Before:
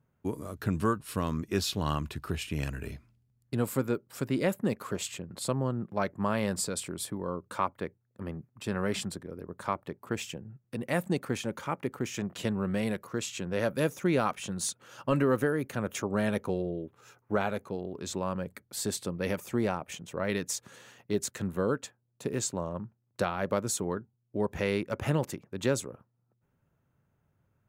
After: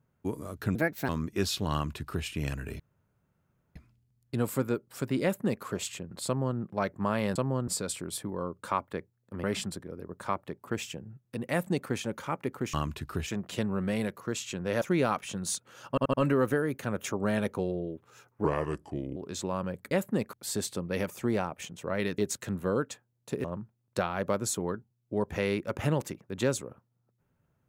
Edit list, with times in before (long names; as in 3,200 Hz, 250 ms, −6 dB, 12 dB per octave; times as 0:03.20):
0:00.75–0:01.24: play speed 146%
0:01.88–0:02.41: duplicate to 0:12.13
0:02.95: splice in room tone 0.96 s
0:04.42–0:04.84: duplicate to 0:18.63
0:05.46–0:05.78: duplicate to 0:06.55
0:08.31–0:08.83: remove
0:13.68–0:13.96: remove
0:15.04: stutter 0.08 s, 4 plays
0:17.35–0:17.88: play speed 74%
0:20.48–0:21.11: remove
0:22.37–0:22.67: remove